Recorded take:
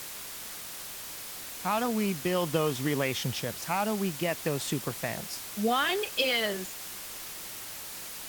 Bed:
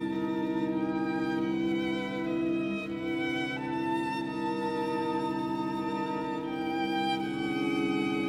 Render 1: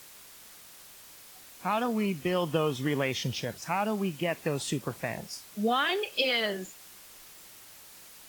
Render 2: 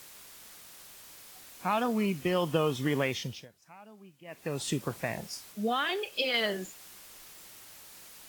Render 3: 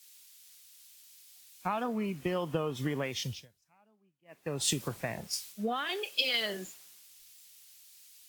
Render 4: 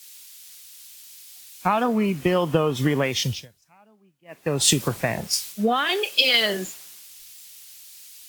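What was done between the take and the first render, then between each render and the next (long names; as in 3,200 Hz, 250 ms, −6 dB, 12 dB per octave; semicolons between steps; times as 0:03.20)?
noise reduction from a noise print 10 dB
0:03.04–0:04.69: duck −22.5 dB, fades 0.45 s; 0:05.52–0:06.34: clip gain −3 dB
downward compressor 12 to 1, threshold −30 dBFS, peak gain reduction 8.5 dB; multiband upward and downward expander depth 100%
level +11.5 dB; brickwall limiter −3 dBFS, peak gain reduction 1.5 dB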